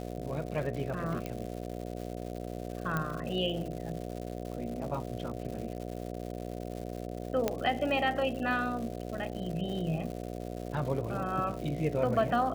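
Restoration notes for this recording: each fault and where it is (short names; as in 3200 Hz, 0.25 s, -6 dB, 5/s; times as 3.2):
buzz 60 Hz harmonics 12 -39 dBFS
crackle 250/s -39 dBFS
1.26 pop -22 dBFS
2.97 pop -18 dBFS
7.48 pop -14 dBFS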